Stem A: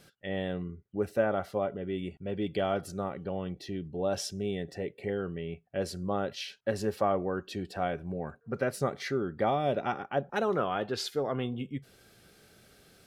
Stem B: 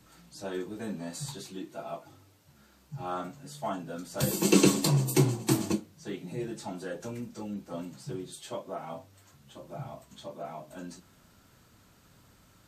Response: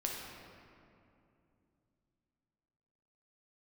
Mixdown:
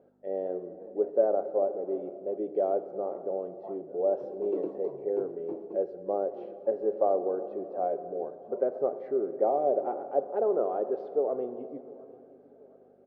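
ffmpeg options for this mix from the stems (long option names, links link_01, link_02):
-filter_complex "[0:a]volume=2dB,asplit=3[link_01][link_02][link_03];[link_02]volume=-8.5dB[link_04];[link_03]volume=-20.5dB[link_05];[1:a]volume=-7dB[link_06];[2:a]atrim=start_sample=2205[link_07];[link_04][link_07]afir=irnorm=-1:irlink=0[link_08];[link_05]aecho=0:1:713|1426|2139|2852|3565|4278:1|0.42|0.176|0.0741|0.0311|0.0131[link_09];[link_01][link_06][link_08][link_09]amix=inputs=4:normalize=0,aeval=exprs='val(0)+0.00794*(sin(2*PI*50*n/s)+sin(2*PI*2*50*n/s)/2+sin(2*PI*3*50*n/s)/3+sin(2*PI*4*50*n/s)/4+sin(2*PI*5*50*n/s)/5)':channel_layout=same,asuperpass=centerf=500:order=4:qfactor=1.4"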